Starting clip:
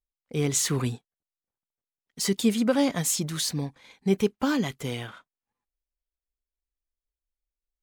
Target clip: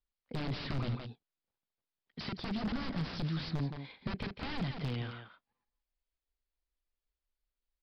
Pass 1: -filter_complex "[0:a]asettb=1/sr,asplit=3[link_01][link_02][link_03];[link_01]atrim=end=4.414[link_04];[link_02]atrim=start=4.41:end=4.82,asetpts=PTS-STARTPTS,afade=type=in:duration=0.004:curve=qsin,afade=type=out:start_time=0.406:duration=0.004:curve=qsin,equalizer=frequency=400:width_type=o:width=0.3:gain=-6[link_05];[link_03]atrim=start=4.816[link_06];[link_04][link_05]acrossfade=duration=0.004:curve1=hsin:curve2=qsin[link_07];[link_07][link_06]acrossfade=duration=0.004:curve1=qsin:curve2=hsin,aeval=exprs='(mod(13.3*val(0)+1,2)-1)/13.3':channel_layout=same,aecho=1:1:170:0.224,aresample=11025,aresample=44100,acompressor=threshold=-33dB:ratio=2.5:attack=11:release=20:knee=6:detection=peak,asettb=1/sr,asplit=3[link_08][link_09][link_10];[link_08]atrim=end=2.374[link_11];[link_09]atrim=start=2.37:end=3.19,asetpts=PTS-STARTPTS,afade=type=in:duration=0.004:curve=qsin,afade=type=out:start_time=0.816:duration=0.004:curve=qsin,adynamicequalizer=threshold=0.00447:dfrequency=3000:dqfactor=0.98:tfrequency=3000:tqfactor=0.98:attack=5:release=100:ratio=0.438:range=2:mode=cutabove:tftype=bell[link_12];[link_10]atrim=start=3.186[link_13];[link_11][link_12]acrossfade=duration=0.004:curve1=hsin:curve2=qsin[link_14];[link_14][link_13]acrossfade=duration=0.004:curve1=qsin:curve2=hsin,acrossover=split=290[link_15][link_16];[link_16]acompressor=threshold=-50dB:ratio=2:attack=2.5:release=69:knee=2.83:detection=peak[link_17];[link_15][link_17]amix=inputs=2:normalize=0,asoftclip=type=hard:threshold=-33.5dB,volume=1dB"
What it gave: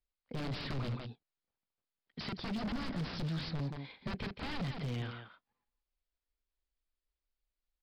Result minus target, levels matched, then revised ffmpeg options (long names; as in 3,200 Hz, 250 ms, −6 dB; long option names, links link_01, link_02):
hard clipping: distortion +16 dB
-filter_complex "[0:a]asettb=1/sr,asplit=3[link_01][link_02][link_03];[link_01]atrim=end=4.414[link_04];[link_02]atrim=start=4.41:end=4.82,asetpts=PTS-STARTPTS,afade=type=in:duration=0.004:curve=qsin,afade=type=out:start_time=0.406:duration=0.004:curve=qsin,equalizer=frequency=400:width_type=o:width=0.3:gain=-6[link_05];[link_03]atrim=start=4.816[link_06];[link_04][link_05]acrossfade=duration=0.004:curve1=hsin:curve2=qsin[link_07];[link_07][link_06]acrossfade=duration=0.004:curve1=qsin:curve2=hsin,aeval=exprs='(mod(13.3*val(0)+1,2)-1)/13.3':channel_layout=same,aecho=1:1:170:0.224,aresample=11025,aresample=44100,acompressor=threshold=-33dB:ratio=2.5:attack=11:release=20:knee=6:detection=peak,asettb=1/sr,asplit=3[link_08][link_09][link_10];[link_08]atrim=end=2.374[link_11];[link_09]atrim=start=2.37:end=3.19,asetpts=PTS-STARTPTS,afade=type=in:duration=0.004:curve=qsin,afade=type=out:start_time=0.816:duration=0.004:curve=qsin,adynamicequalizer=threshold=0.00447:dfrequency=3000:dqfactor=0.98:tfrequency=3000:tqfactor=0.98:attack=5:release=100:ratio=0.438:range=2:mode=cutabove:tftype=bell[link_12];[link_10]atrim=start=3.186[link_13];[link_11][link_12]acrossfade=duration=0.004:curve1=hsin:curve2=qsin[link_14];[link_14][link_13]acrossfade=duration=0.004:curve1=qsin:curve2=hsin,acrossover=split=290[link_15][link_16];[link_16]acompressor=threshold=-50dB:ratio=2:attack=2.5:release=69:knee=2.83:detection=peak[link_17];[link_15][link_17]amix=inputs=2:normalize=0,asoftclip=type=hard:threshold=-27.5dB,volume=1dB"